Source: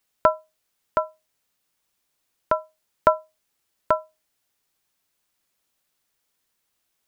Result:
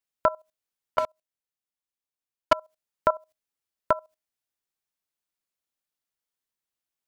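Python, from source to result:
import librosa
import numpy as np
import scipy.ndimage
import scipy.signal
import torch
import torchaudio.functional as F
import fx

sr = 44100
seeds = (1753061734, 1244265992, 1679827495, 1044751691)

y = fx.level_steps(x, sr, step_db=18)
y = fx.leveller(y, sr, passes=3, at=(0.98, 2.53))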